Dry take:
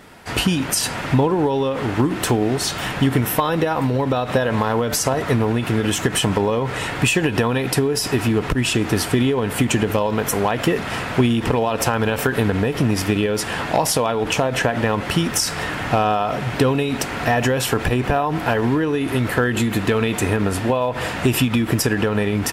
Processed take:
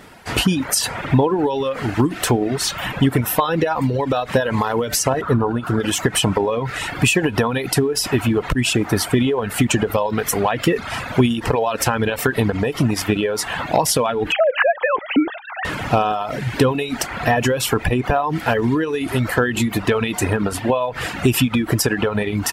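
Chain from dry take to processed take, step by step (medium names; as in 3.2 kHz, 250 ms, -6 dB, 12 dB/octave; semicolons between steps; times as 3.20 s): 14.32–15.65 s: formants replaced by sine waves; reverb removal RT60 1.2 s; 5.21–5.80 s: resonant high shelf 1.7 kHz -8 dB, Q 3; trim +2 dB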